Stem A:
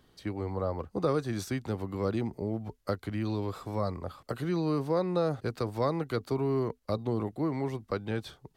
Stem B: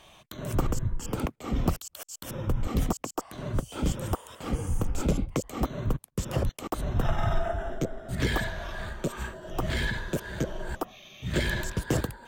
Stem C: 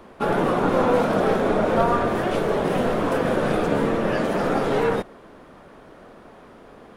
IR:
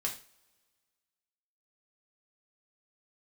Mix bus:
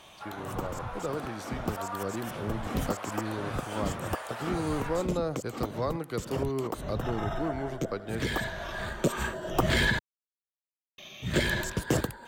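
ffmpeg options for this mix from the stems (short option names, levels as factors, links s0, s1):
-filter_complex "[0:a]volume=0.473,asplit=3[s0][s1][s2];[s1]volume=0.112[s3];[1:a]volume=1.26,asplit=3[s4][s5][s6];[s4]atrim=end=9.99,asetpts=PTS-STARTPTS,afade=t=out:st=9.986:d=0.004:c=hsin[s7];[s5]atrim=start=9.99:end=10.98,asetpts=PTS-STARTPTS,volume=0[s8];[s6]atrim=start=10.98,asetpts=PTS-STARTPTS,afade=t=in:d=0.004:c=hsin[s9];[s7][s8][s9]concat=n=3:v=0:a=1[s10];[2:a]highpass=f=720:w=0.5412,highpass=f=720:w=1.3066,volume=0.168[s11];[s2]apad=whole_len=541222[s12];[s10][s12]sidechaincompress=threshold=0.00708:ratio=5:attack=33:release=1370[s13];[s3]aecho=0:1:82:1[s14];[s0][s13][s11][s14]amix=inputs=4:normalize=0,lowshelf=f=73:g=-11,dynaudnorm=f=310:g=13:m=1.68"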